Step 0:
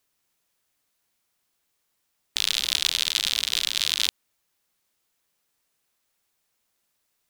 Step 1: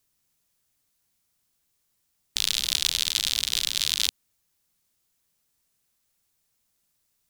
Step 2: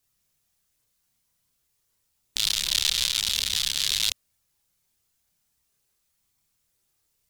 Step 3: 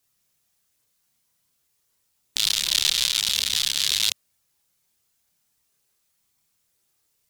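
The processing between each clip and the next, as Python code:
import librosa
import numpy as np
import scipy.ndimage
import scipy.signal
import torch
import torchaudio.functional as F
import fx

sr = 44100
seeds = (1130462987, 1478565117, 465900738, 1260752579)

y1 = fx.bass_treble(x, sr, bass_db=10, treble_db=6)
y1 = F.gain(torch.from_numpy(y1), -4.0).numpy()
y2 = fx.chorus_voices(y1, sr, voices=4, hz=0.45, base_ms=29, depth_ms=1.3, mix_pct=50)
y2 = F.gain(torch.from_numpy(y2), 3.5).numpy()
y3 = fx.low_shelf(y2, sr, hz=80.0, db=-11.0)
y3 = F.gain(torch.from_numpy(y3), 2.5).numpy()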